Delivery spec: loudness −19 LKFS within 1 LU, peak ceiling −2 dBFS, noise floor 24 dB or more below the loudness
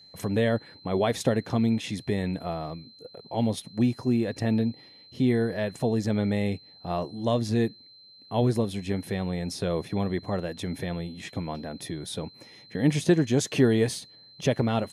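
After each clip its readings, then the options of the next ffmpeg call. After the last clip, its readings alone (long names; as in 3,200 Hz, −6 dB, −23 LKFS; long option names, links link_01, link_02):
interfering tone 4,100 Hz; level of the tone −50 dBFS; integrated loudness −27.5 LKFS; sample peak −9.5 dBFS; target loudness −19.0 LKFS
→ -af "bandreject=frequency=4100:width=30"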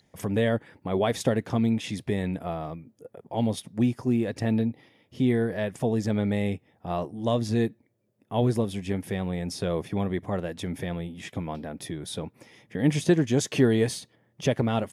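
interfering tone none found; integrated loudness −27.5 LKFS; sample peak −9.5 dBFS; target loudness −19.0 LKFS
→ -af "volume=8.5dB,alimiter=limit=-2dB:level=0:latency=1"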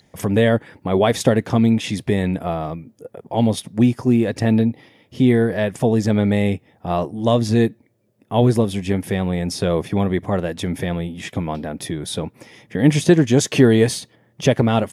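integrated loudness −19.0 LKFS; sample peak −2.0 dBFS; background noise floor −60 dBFS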